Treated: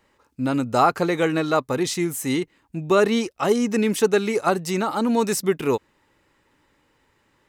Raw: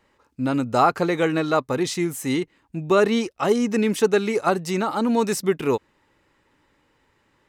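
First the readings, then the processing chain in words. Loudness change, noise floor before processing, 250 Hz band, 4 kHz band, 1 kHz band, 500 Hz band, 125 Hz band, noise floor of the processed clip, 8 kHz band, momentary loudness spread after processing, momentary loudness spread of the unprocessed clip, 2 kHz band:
0.0 dB, -66 dBFS, 0.0 dB, +1.0 dB, 0.0 dB, 0.0 dB, 0.0 dB, -65 dBFS, +2.5 dB, 6 LU, 6 LU, +0.5 dB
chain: treble shelf 7.7 kHz +5.5 dB

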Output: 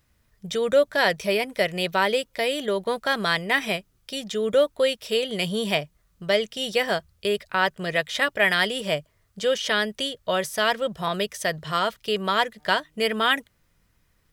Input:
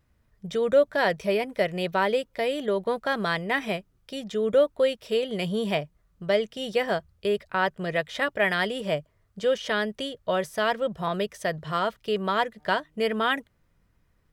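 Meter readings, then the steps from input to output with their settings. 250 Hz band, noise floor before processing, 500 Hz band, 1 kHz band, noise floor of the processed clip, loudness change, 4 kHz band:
0.0 dB, -68 dBFS, +0.5 dB, +2.0 dB, -67 dBFS, +2.5 dB, +7.5 dB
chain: treble shelf 2.1 kHz +10.5 dB

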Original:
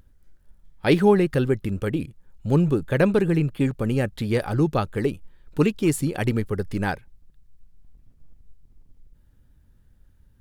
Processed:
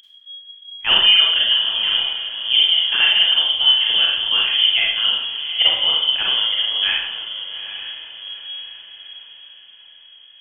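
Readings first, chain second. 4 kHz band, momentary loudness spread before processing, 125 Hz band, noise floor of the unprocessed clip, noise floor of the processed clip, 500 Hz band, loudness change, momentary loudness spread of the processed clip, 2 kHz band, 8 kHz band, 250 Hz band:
+31.0 dB, 9 LU, under -25 dB, -58 dBFS, -46 dBFS, -16.5 dB, +8.5 dB, 17 LU, +11.0 dB, under -40 dB, under -25 dB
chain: frequency inversion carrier 3.3 kHz; echo that smears into a reverb 863 ms, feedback 42%, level -11 dB; Schroeder reverb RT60 0.66 s, combs from 33 ms, DRR -3 dB

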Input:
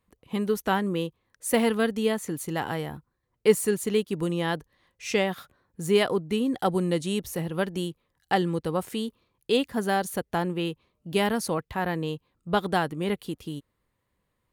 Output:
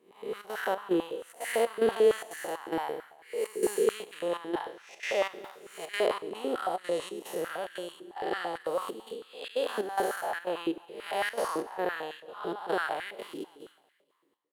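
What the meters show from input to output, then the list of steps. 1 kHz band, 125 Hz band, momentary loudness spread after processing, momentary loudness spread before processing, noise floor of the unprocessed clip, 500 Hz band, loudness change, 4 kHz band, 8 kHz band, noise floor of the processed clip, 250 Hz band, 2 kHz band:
-3.5 dB, -21.5 dB, 13 LU, 12 LU, -78 dBFS, -3.0 dB, -5.0 dB, -6.5 dB, -7.5 dB, -67 dBFS, -10.0 dB, -3.5 dB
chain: spectral blur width 271 ms; trance gate "xxxxx.xxx.." 182 bpm -12 dB; feedback delay 233 ms, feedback 50%, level -21 dB; step-sequenced high-pass 9 Hz 360–1700 Hz

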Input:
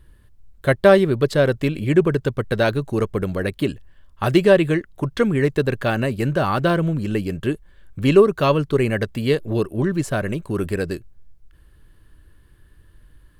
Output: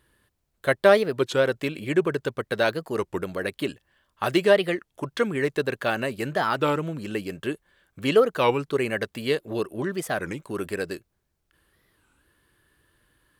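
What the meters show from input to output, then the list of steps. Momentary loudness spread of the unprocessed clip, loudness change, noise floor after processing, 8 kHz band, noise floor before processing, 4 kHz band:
11 LU, -5.5 dB, -75 dBFS, -2.0 dB, -53 dBFS, -1.0 dB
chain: high-pass 480 Hz 6 dB/octave; warped record 33 1/3 rpm, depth 250 cents; trim -1.5 dB

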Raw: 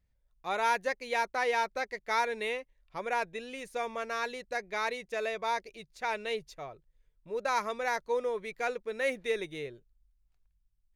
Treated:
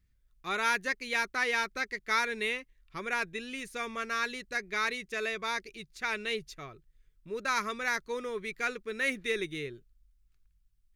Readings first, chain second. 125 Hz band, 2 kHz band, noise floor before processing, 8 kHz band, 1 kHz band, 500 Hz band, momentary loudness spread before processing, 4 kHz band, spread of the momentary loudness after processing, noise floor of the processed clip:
+4.0 dB, +4.0 dB, -74 dBFS, +4.0 dB, -3.0 dB, -4.0 dB, 11 LU, +4.0 dB, 11 LU, -70 dBFS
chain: high-order bell 680 Hz -12 dB 1.2 oct; trim +4 dB

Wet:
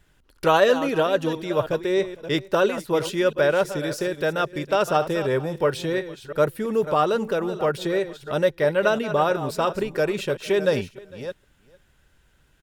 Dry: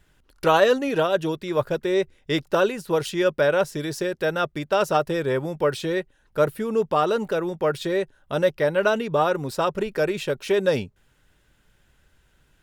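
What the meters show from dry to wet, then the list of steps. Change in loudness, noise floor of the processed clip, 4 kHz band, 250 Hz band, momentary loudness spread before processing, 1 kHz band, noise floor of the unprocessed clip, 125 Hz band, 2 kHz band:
+0.5 dB, -61 dBFS, +0.5 dB, +0.5 dB, 6 LU, +0.5 dB, -64 dBFS, +0.5 dB, +0.5 dB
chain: chunks repeated in reverse 333 ms, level -11.5 dB; on a send: delay 455 ms -23 dB

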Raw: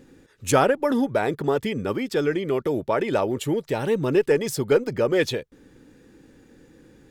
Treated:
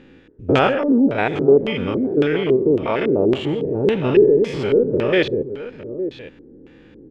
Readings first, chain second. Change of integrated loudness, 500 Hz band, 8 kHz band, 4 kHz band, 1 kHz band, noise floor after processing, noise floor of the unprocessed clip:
+5.5 dB, +6.0 dB, under -15 dB, +4.5 dB, +1.5 dB, -47 dBFS, -56 dBFS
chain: spectrogram pixelated in time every 100 ms; multi-tap echo 123/146/863 ms -19/-18.5/-12.5 dB; LFO low-pass square 1.8 Hz 390–2900 Hz; trim +5.5 dB

